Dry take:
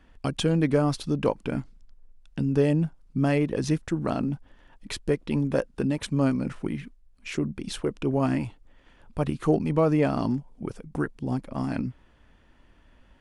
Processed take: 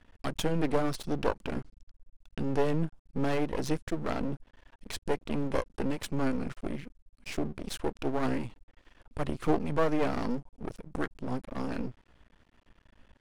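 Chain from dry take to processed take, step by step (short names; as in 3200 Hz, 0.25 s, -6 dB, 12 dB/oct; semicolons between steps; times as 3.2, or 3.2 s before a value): half-wave rectifier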